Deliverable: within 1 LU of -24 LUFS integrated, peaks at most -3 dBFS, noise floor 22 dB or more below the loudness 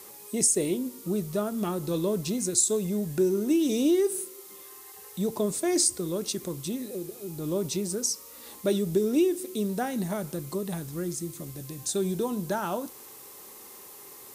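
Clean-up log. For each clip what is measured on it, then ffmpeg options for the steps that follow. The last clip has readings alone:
noise floor -47 dBFS; noise floor target -50 dBFS; loudness -28.0 LUFS; peak -10.0 dBFS; loudness target -24.0 LUFS
-> -af "afftdn=nr=6:nf=-47"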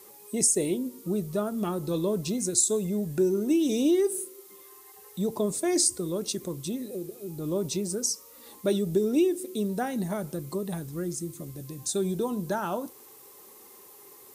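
noise floor -51 dBFS; loudness -28.0 LUFS; peak -10.0 dBFS; loudness target -24.0 LUFS
-> -af "volume=4dB"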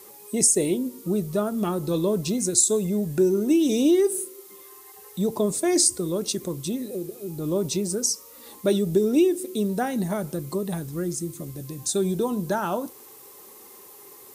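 loudness -24.0 LUFS; peak -6.0 dBFS; noise floor -47 dBFS

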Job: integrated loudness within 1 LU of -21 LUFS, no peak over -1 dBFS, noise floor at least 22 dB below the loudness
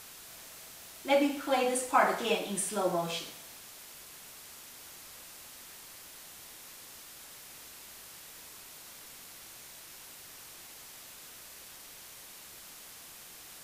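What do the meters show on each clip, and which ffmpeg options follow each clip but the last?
noise floor -50 dBFS; noise floor target -53 dBFS; loudness -30.5 LUFS; peak -11.5 dBFS; loudness target -21.0 LUFS
-> -af "afftdn=nr=6:nf=-50"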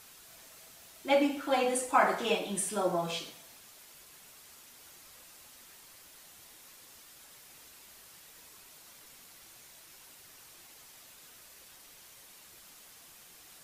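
noise floor -55 dBFS; loudness -30.0 LUFS; peak -11.5 dBFS; loudness target -21.0 LUFS
-> -af "volume=9dB"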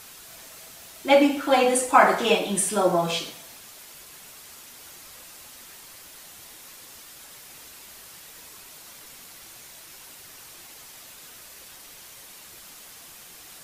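loudness -21.0 LUFS; peak -2.5 dBFS; noise floor -46 dBFS

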